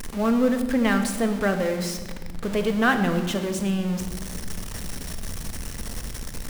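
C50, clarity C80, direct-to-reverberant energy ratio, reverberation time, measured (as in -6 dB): 8.5 dB, 10.0 dB, 6.5 dB, 1.3 s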